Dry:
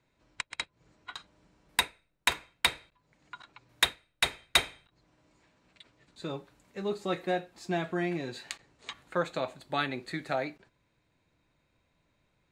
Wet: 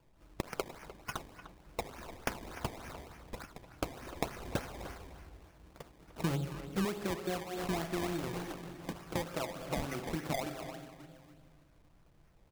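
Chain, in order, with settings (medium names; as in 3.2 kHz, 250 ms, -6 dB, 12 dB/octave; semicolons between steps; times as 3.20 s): 7.38–8.29 s: block-companded coder 3-bit; graphic EQ 125/250/500/1000/2000/4000/8000 Hz -9/-8/-9/-9/-10/-6/-5 dB; saturation -22.5 dBFS, distortion -19 dB; reverberation RT60 1.8 s, pre-delay 6 ms, DRR 9 dB; compression 8:1, threshold -47 dBFS, peak gain reduction 17 dB; 6.21–6.85 s: tone controls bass +9 dB, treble -2 dB; decimation with a swept rate 22×, swing 100% 3.4 Hz; speakerphone echo 300 ms, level -12 dB; trim +14.5 dB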